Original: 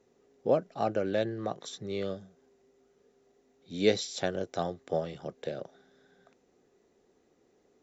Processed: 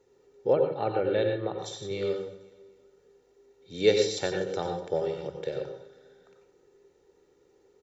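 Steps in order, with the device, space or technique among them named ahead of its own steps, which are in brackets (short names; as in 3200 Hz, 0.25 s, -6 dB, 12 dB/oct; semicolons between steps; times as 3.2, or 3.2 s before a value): microphone above a desk (comb 2.2 ms, depth 59%; reverb RT60 0.40 s, pre-delay 85 ms, DRR 3.5 dB); 0.53–1.59 steep low-pass 4200 Hz 96 dB/oct; feedback echo 0.249 s, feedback 41%, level -20 dB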